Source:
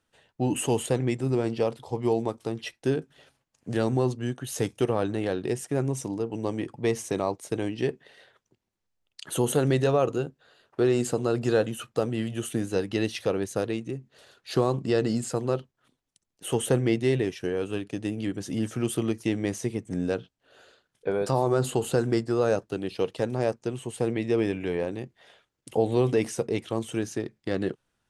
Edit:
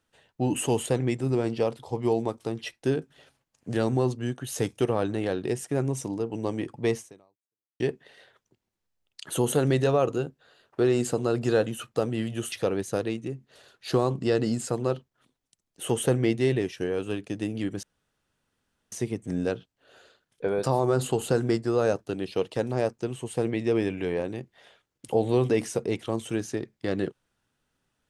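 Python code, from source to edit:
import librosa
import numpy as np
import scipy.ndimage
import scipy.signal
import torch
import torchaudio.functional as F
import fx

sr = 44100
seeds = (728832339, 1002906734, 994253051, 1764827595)

y = fx.edit(x, sr, fx.fade_out_span(start_s=6.95, length_s=0.85, curve='exp'),
    fx.cut(start_s=12.52, length_s=0.63),
    fx.room_tone_fill(start_s=18.46, length_s=1.09), tone=tone)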